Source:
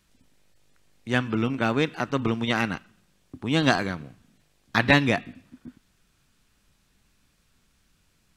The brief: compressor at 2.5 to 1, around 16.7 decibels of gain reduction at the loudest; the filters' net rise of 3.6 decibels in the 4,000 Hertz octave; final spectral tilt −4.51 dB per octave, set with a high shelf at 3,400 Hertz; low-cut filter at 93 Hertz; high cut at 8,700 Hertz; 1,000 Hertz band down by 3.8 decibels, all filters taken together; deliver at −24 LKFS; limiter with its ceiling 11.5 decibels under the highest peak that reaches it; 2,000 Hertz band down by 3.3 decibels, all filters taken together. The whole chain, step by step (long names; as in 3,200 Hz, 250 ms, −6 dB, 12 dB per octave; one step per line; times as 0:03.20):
high-pass filter 93 Hz
low-pass filter 8,700 Hz
parametric band 1,000 Hz −4.5 dB
parametric band 2,000 Hz −3.5 dB
high-shelf EQ 3,400 Hz −4.5 dB
parametric band 4,000 Hz +8.5 dB
downward compressor 2.5 to 1, threshold −40 dBFS
level +19.5 dB
brickwall limiter −10.5 dBFS